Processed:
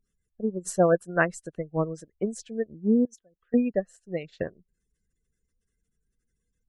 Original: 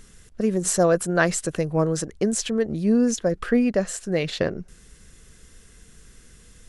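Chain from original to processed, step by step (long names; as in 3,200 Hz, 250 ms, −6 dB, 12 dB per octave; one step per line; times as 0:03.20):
gate on every frequency bin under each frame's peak −25 dB strong
0:03.05–0:03.54: first-order pre-emphasis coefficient 0.8
expander for the loud parts 2.5 to 1, over −34 dBFS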